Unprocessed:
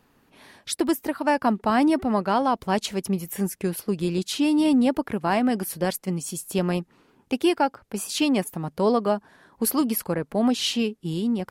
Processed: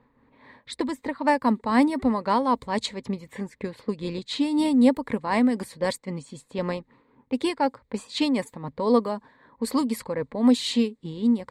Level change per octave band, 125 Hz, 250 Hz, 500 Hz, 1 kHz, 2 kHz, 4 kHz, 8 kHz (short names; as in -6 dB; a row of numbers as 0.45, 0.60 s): -5.5, -0.5, -1.5, -1.0, -1.5, -2.5, -9.0 dB